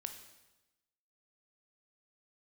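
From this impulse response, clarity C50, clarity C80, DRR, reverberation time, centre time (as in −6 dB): 8.5 dB, 10.5 dB, 6.0 dB, 1.0 s, 18 ms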